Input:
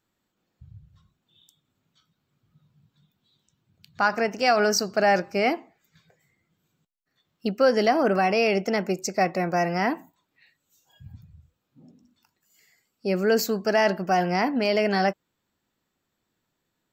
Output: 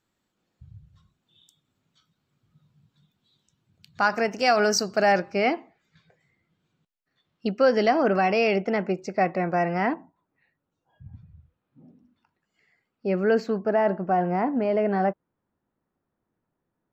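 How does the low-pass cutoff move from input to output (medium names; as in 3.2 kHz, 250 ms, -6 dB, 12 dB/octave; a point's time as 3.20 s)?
12 kHz
from 5.12 s 4.5 kHz
from 8.56 s 2.6 kHz
from 9.94 s 1.2 kHz
from 11.13 s 2.2 kHz
from 13.58 s 1.2 kHz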